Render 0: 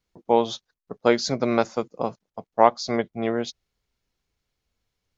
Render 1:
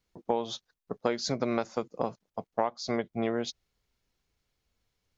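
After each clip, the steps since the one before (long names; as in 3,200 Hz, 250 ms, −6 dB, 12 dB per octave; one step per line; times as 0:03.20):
downward compressor 6 to 1, threshold −25 dBFS, peak gain reduction 15.5 dB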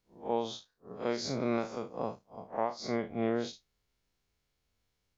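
spectrum smeared in time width 102 ms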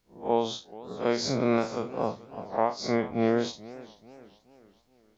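feedback echo with a swinging delay time 429 ms, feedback 45%, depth 196 cents, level −19 dB
level +6.5 dB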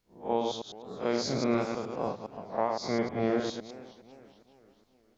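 delay that plays each chunk backwards 103 ms, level −4.5 dB
level −4 dB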